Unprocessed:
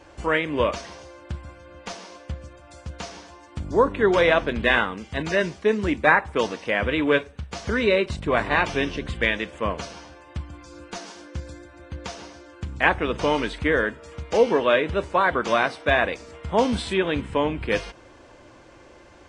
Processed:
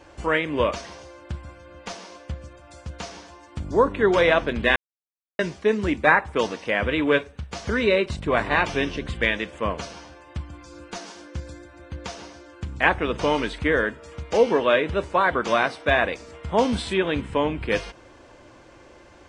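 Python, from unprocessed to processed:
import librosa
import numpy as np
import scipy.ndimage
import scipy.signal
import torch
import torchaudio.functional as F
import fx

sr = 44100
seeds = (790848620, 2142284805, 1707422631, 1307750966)

y = fx.edit(x, sr, fx.silence(start_s=4.76, length_s=0.63), tone=tone)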